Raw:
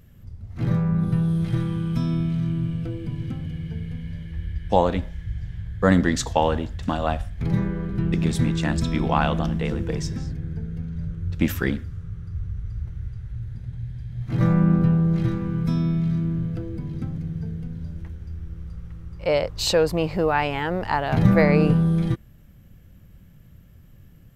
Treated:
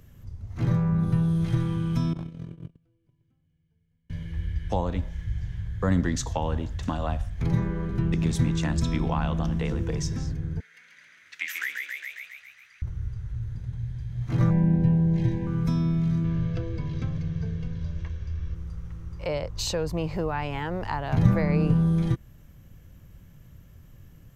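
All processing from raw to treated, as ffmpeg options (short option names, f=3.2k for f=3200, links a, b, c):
-filter_complex "[0:a]asettb=1/sr,asplit=3[a][b][c];[a]atrim=end=2.134[d];[b]atrim=start=2.13:end=4.1,asetpts=PTS-STARTPTS,afade=t=in:d=0.004:c=qsin,afade=t=out:st=1.966:d=0.004:c=qsin,agate=range=-39dB:threshold=-22dB:ratio=16:release=100:detection=peak,aeval=exprs='0.0596*(abs(mod(val(0)/0.0596+3,4)-2)-1)':c=same[e];[c]atrim=start=4.096[f];[d][e]acrossfade=d=0.004:c1=hsin:c2=qsin[g];[g][f]acrossfade=d=0.004:c1=qsin:c2=hsin,asettb=1/sr,asplit=3[h][i][j];[h]atrim=end=10.604[k];[i]atrim=start=10.6:end=12.82,asetpts=PTS-STARTPTS,afade=t=in:d=0.004:c=qsin,afade=t=out:st=2.216:d=0.004:c=qsin,highpass=f=2k:t=q:w=4,asplit=9[l][m][n][o][p][q][r][s][t];[m]adelay=136,afreqshift=59,volume=-4.5dB[u];[n]adelay=272,afreqshift=118,volume=-9.2dB[v];[o]adelay=408,afreqshift=177,volume=-14dB[w];[p]adelay=544,afreqshift=236,volume=-18.7dB[x];[q]adelay=680,afreqshift=295,volume=-23.4dB[y];[r]adelay=816,afreqshift=354,volume=-28.2dB[z];[s]adelay=952,afreqshift=413,volume=-32.9dB[aa];[t]adelay=1088,afreqshift=472,volume=-37.6dB[ab];[l][u][v][w][x][y][z][aa][ab]amix=inputs=9:normalize=0,atrim=end_sample=97902[ac];[j]atrim=start=12.816[ad];[k][ac]acrossfade=d=0.004:c1=hsin:c2=qsin[ae];[ae][ad]acrossfade=d=0.004:c1=qsin:c2=hsin,asettb=1/sr,asplit=3[af][ag][ah];[af]atrim=end=14.504[ai];[ag]atrim=start=14.5:end=15.47,asetpts=PTS-STARTPTS,afade=t=in:d=0.004:c=qsin,afade=t=out:st=0.966:d=0.004:c=qsin,asuperstop=centerf=1300:order=20:qfactor=3,highshelf=f=7.7k:g=-9[aj];[ah]atrim=start=15.466[ak];[ai][aj]acrossfade=d=0.004:c1=hsin:c2=qsin[al];[al][ak]acrossfade=d=0.004:c1=qsin:c2=hsin,asettb=1/sr,asplit=3[am][an][ao];[am]atrim=end=16.244[ap];[an]atrim=start=16.24:end=18.55,asetpts=PTS-STARTPTS,afade=t=in:d=0.004:c=qsin,afade=t=out:st=2.306:d=0.004:c=qsin,lowpass=f=6.5k:w=0.5412,lowpass=f=6.5k:w=1.3066,equalizer=f=3.1k:t=o:w=1.8:g=7,aecho=1:1:1.8:0.44,atrim=end_sample=101871[aq];[ao]atrim=start=18.546[ar];[ap][aq]acrossfade=d=0.004:c1=hsin:c2=qsin[as];[as][ar]acrossfade=d=0.004:c1=qsin:c2=hsin,equalizer=f=200:t=o:w=0.33:g=-5,equalizer=f=1k:t=o:w=0.33:g=4,equalizer=f=6.3k:t=o:w=0.33:g=6,acrossover=split=210[at][au];[au]acompressor=threshold=-32dB:ratio=2.5[av];[at][av]amix=inputs=2:normalize=0"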